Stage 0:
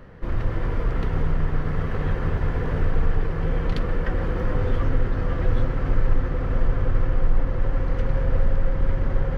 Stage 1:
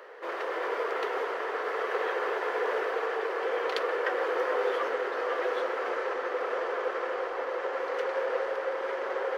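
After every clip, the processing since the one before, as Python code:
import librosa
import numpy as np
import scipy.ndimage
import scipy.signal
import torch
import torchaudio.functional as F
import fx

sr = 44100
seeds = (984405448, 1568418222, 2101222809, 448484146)

y = scipy.signal.sosfilt(scipy.signal.ellip(4, 1.0, 60, 410.0, 'highpass', fs=sr, output='sos'), x)
y = F.gain(torch.from_numpy(y), 4.5).numpy()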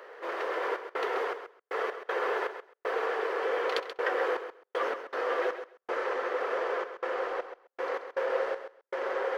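y = fx.step_gate(x, sr, bpm=79, pattern='xxxx.xx..x.xx..x', floor_db=-60.0, edge_ms=4.5)
y = fx.echo_feedback(y, sr, ms=132, feedback_pct=15, wet_db=-10.0)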